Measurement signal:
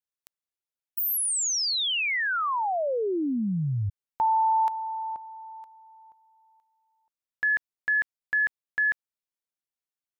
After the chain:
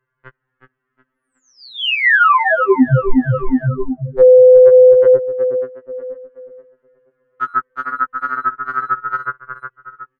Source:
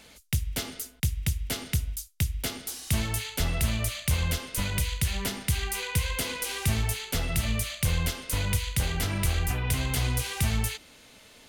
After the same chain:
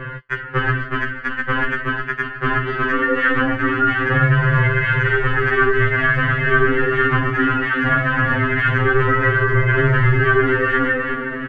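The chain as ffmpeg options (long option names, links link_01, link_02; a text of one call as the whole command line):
ffmpeg -i in.wav -filter_complex "[0:a]lowshelf=frequency=310:gain=5,aecho=1:1:366|732|1098|1464:0.376|0.124|0.0409|0.0135,highpass=frequency=510:width_type=q:width=0.5412,highpass=frequency=510:width_type=q:width=1.307,lowpass=frequency=2100:width_type=q:width=0.5176,lowpass=frequency=2100:width_type=q:width=0.7071,lowpass=frequency=2100:width_type=q:width=1.932,afreqshift=-380,equalizer=frequency=720:width=1.2:gain=-7.5,asplit=2[link_01][link_02];[link_02]acompressor=threshold=-41dB:ratio=6:attack=0.27:release=135:knee=1:detection=peak,volume=1dB[link_03];[link_01][link_03]amix=inputs=2:normalize=0,aecho=1:1:7.1:0.54,flanger=delay=1.9:depth=3:regen=-20:speed=0.21:shape=sinusoidal,acontrast=85,alimiter=level_in=27dB:limit=-1dB:release=50:level=0:latency=1,afftfilt=real='re*2.45*eq(mod(b,6),0)':imag='im*2.45*eq(mod(b,6),0)':win_size=2048:overlap=0.75,volume=-4dB" out.wav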